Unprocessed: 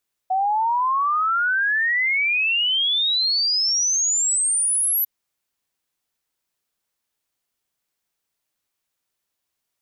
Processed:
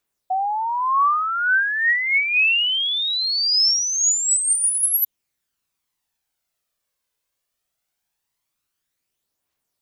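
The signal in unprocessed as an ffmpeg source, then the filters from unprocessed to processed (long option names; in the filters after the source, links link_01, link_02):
-f lavfi -i "aevalsrc='0.133*clip(min(t,4.75-t)/0.01,0,1)*sin(2*PI*740*4.75/log(12000/740)*(exp(log(12000/740)*t/4.75)-1))':duration=4.75:sample_rate=44100"
-af "aphaser=in_gain=1:out_gain=1:delay=2:decay=0.41:speed=0.21:type=triangular"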